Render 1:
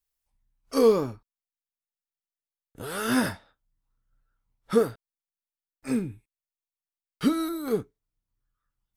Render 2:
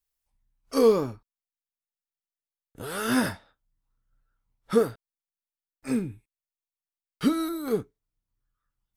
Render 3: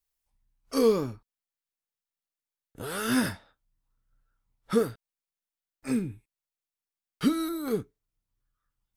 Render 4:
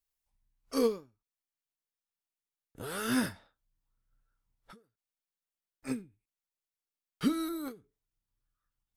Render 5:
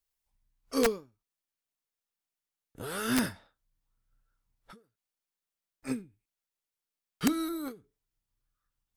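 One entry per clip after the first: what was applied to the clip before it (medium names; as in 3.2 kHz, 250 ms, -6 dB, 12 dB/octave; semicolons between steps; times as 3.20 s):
no audible change
dynamic bell 740 Hz, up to -6 dB, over -36 dBFS, Q 0.84
endings held to a fixed fall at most 190 dB/s; trim -4 dB
integer overflow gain 18 dB; trim +1.5 dB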